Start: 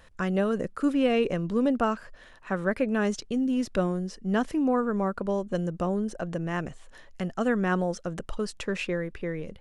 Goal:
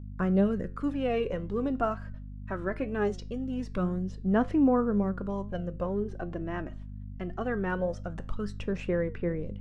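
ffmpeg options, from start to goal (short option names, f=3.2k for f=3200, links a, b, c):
-filter_complex "[0:a]aemphasis=mode=reproduction:type=75kf,agate=range=-37dB:threshold=-45dB:ratio=16:detection=peak,asettb=1/sr,asplit=3[a][b][c];[a]atrim=end=5.444[d];[b]atrim=start=5.44:end=7.89,asetpts=PTS-STARTPTS,afade=t=in:d=0.004:c=qsin,afade=t=out:st=2.446:d=0.004:c=qsin,equalizer=f=8k:w=1.5:g=-10[e];[c]atrim=start=7.886[f];[d][e]acrossfade=d=0.004:c1=hsin:c2=qsin[g];[g][f]acrossfade=d=0.004:c1=qsin:c2=hsin,aphaser=in_gain=1:out_gain=1:delay=3.2:decay=0.51:speed=0.22:type=sinusoidal,aeval=exprs='val(0)+0.0178*(sin(2*PI*50*n/s)+sin(2*PI*2*50*n/s)/2+sin(2*PI*3*50*n/s)/3+sin(2*PI*4*50*n/s)/4+sin(2*PI*5*50*n/s)/5)':c=same,flanger=delay=9.7:depth=1.8:regen=80:speed=2:shape=sinusoidal"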